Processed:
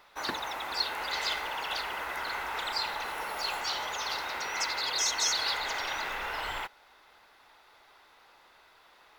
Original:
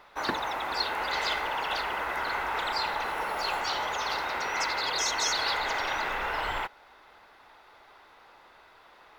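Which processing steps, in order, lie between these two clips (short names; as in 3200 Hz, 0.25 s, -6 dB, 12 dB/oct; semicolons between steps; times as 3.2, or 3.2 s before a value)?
high shelf 2900 Hz +9.5 dB; gain -6 dB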